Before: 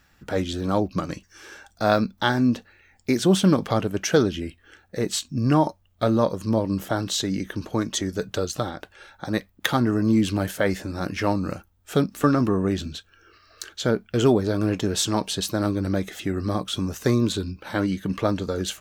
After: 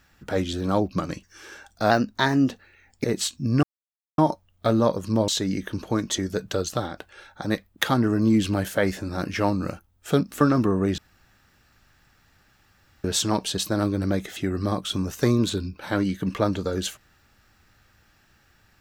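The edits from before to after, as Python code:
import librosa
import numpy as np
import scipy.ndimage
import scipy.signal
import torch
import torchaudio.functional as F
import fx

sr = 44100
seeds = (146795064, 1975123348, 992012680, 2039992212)

y = fx.edit(x, sr, fx.speed_span(start_s=1.9, length_s=0.65, speed=1.1),
    fx.cut(start_s=3.1, length_s=1.86),
    fx.insert_silence(at_s=5.55, length_s=0.55),
    fx.cut(start_s=6.65, length_s=0.46),
    fx.room_tone_fill(start_s=12.81, length_s=2.06), tone=tone)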